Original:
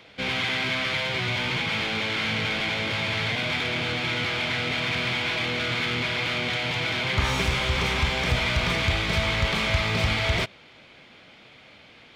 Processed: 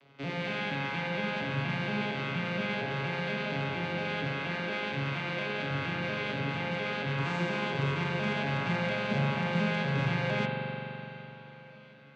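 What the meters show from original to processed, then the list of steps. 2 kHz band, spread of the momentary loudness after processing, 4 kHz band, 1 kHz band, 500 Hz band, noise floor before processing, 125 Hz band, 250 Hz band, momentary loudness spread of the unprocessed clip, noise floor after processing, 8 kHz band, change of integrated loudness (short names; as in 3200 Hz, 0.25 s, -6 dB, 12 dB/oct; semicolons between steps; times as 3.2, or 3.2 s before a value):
-7.5 dB, 7 LU, -13.5 dB, -4.0 dB, -2.5 dB, -51 dBFS, -3.5 dB, -1.0 dB, 2 LU, -51 dBFS, under -15 dB, -7.0 dB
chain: arpeggiated vocoder major triad, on C#3, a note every 0.234 s; spring tank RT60 3.6 s, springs 42 ms, chirp 80 ms, DRR -2.5 dB; gain -7 dB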